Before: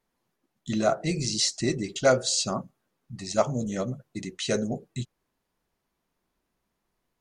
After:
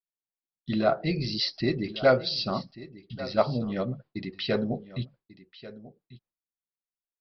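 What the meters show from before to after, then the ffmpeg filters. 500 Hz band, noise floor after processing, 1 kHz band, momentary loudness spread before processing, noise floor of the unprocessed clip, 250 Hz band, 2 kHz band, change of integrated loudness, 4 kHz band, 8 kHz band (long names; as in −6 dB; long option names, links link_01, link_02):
0.0 dB, below −85 dBFS, 0.0 dB, 15 LU, −80 dBFS, 0.0 dB, 0.0 dB, −1.0 dB, −1.0 dB, below −20 dB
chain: -af "agate=range=-33dB:threshold=-44dB:ratio=3:detection=peak,aecho=1:1:1141:0.141,aresample=11025,aresample=44100"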